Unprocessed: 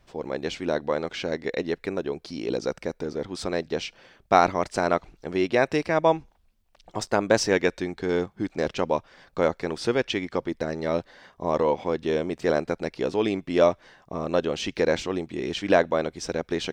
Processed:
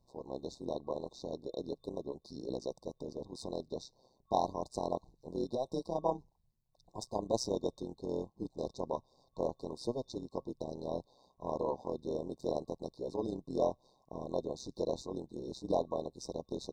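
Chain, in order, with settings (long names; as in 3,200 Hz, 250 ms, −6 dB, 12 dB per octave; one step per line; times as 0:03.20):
amplitude modulation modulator 130 Hz, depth 70%
brick-wall band-stop 1,100–3,600 Hz
level −8.5 dB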